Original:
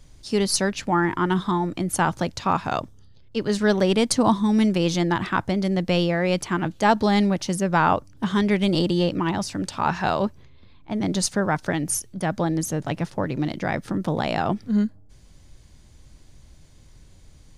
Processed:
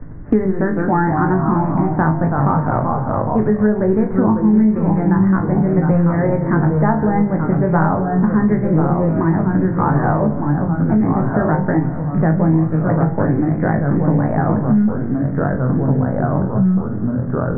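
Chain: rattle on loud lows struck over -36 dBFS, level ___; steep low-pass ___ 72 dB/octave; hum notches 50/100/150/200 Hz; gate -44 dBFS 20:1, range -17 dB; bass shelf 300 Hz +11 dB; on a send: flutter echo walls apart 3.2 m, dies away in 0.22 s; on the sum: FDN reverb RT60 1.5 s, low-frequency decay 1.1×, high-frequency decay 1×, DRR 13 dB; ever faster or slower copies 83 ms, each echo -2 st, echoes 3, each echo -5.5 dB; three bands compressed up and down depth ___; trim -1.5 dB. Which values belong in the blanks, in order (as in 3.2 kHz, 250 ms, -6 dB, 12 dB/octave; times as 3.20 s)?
-29 dBFS, 1.9 kHz, 100%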